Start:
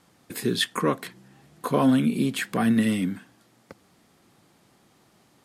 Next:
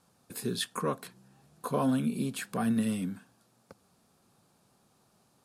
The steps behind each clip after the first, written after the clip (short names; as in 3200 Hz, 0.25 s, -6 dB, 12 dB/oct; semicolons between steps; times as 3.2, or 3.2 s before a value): thirty-one-band EQ 315 Hz -8 dB, 2000 Hz -11 dB, 3150 Hz -5 dB, 10000 Hz +4 dB; gain -6 dB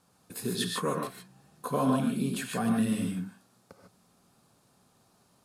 non-linear reverb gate 0.17 s rising, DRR 1.5 dB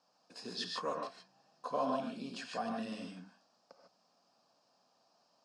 speaker cabinet 390–5700 Hz, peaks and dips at 390 Hz -9 dB, 650 Hz +5 dB, 1400 Hz -5 dB, 2100 Hz -8 dB, 3600 Hz -6 dB, 5100 Hz +8 dB; gain -4 dB